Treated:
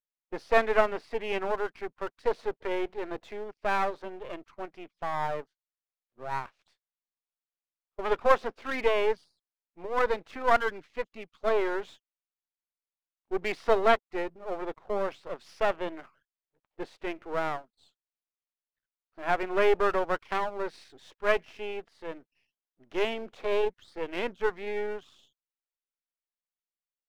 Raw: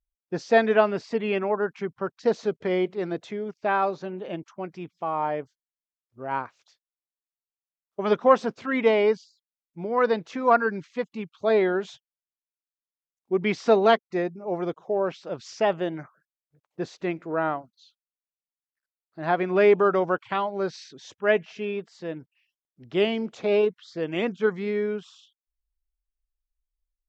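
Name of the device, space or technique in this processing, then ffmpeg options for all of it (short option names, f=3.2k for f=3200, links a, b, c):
crystal radio: -af "highpass=360,lowpass=3.4k,aeval=exprs='if(lt(val(0),0),0.251*val(0),val(0))':c=same"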